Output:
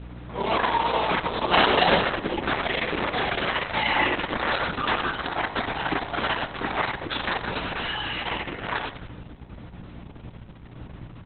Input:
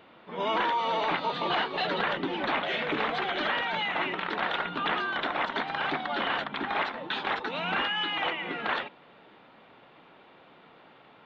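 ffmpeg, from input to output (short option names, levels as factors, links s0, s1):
-filter_complex "[0:a]lowshelf=f=460:g=4,asplit=3[s0][s1][s2];[s0]afade=t=out:st=1.51:d=0.02[s3];[s1]aeval=exprs='0.15*sin(PI/2*1.78*val(0)/0.15)':c=same,afade=t=in:st=1.51:d=0.02,afade=t=out:st=1.95:d=0.02[s4];[s2]afade=t=in:st=1.95:d=0.02[s5];[s3][s4][s5]amix=inputs=3:normalize=0,asplit=3[s6][s7][s8];[s6]afade=t=out:st=3.75:d=0.02[s9];[s7]aecho=1:1:3.5:0.82,afade=t=in:st=3.75:d=0.02,afade=t=out:st=4.56:d=0.02[s10];[s8]afade=t=in:st=4.56:d=0.02[s11];[s9][s10][s11]amix=inputs=3:normalize=0,flanger=delay=22.5:depth=6.1:speed=3,asplit=3[s12][s13][s14];[s12]afade=t=out:st=7.58:d=0.02[s15];[s13]volume=56.2,asoftclip=hard,volume=0.0178,afade=t=in:st=7.58:d=0.02,afade=t=out:st=8.26:d=0.02[s16];[s14]afade=t=in:st=8.26:d=0.02[s17];[s15][s16][s17]amix=inputs=3:normalize=0,aeval=exprs='val(0)+0.00794*(sin(2*PI*60*n/s)+sin(2*PI*2*60*n/s)/2+sin(2*PI*3*60*n/s)/3+sin(2*PI*4*60*n/s)/4+sin(2*PI*5*60*n/s)/5)':c=same,aecho=1:1:93|186|279|372:0.422|0.164|0.0641|0.025,volume=1.88" -ar 48000 -c:a libopus -b:a 6k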